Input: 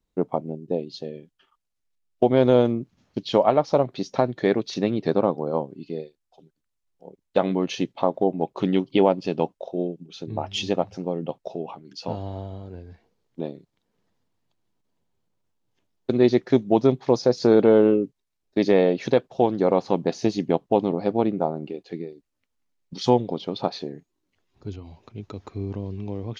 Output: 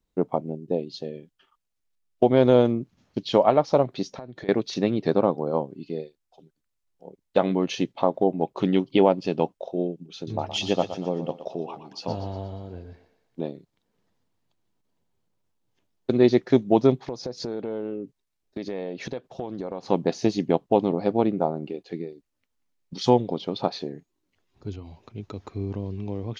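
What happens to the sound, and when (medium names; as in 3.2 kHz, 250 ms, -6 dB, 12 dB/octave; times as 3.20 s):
4.08–4.49 s: compression 5:1, threshold -36 dBFS
10.15–13.43 s: thinning echo 119 ms, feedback 49%, level -9.5 dB
17.06–19.83 s: compression 4:1, threshold -30 dBFS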